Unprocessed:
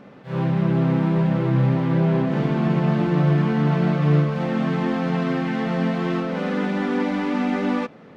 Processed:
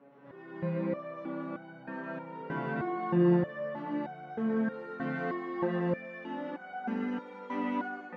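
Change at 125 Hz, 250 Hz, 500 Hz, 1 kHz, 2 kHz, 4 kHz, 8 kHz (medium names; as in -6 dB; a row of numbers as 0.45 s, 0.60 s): -18.0 dB, -12.5 dB, -9.0 dB, -9.0 dB, -9.5 dB, under -15 dB, no reading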